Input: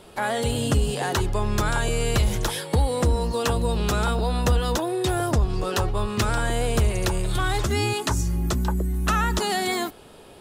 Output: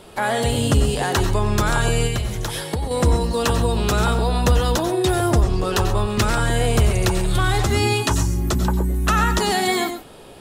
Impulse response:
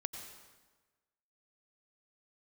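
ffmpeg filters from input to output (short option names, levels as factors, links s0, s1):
-filter_complex "[0:a]asettb=1/sr,asplit=3[s0][s1][s2];[s0]atrim=end=2.064[s3];[s1]atrim=start=2.06:end=2.91,asetpts=PTS-STARTPTS,afade=t=in:d=0.004:c=qsin,afade=t=out:st=0.846:d=0.004:c=qsin,acompressor=threshold=0.0501:ratio=5[s4];[s2]atrim=start=2.906[s5];[s3][s4]acrossfade=d=0.004:c1=hsin:c2=qsin[s6];[s6][s5]acrossfade=d=0.004:c1=qsin:c2=hsin[s7];[1:a]atrim=start_sample=2205,atrim=end_sample=6174[s8];[s7][s8]afir=irnorm=-1:irlink=0,volume=1.88"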